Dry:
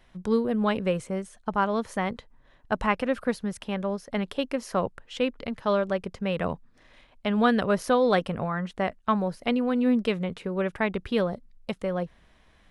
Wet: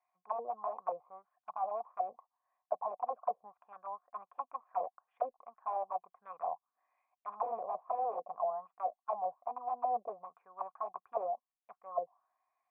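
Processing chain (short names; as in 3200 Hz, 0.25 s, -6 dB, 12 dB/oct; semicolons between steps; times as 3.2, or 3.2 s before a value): wrapped overs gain 18 dB; vocal tract filter a; auto-wah 500–2200 Hz, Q 4.1, down, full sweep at -35 dBFS; gain +10 dB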